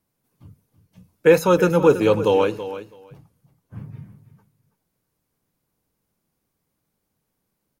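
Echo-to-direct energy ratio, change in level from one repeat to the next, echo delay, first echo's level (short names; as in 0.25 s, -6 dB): -13.0 dB, -16.5 dB, 0.328 s, -13.0 dB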